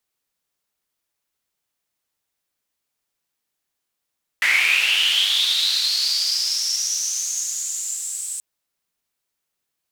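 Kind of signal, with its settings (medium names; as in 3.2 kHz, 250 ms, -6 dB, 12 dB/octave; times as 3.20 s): swept filtered noise white, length 3.98 s bandpass, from 2 kHz, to 8.1 kHz, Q 9.1, linear, gain ramp -17.5 dB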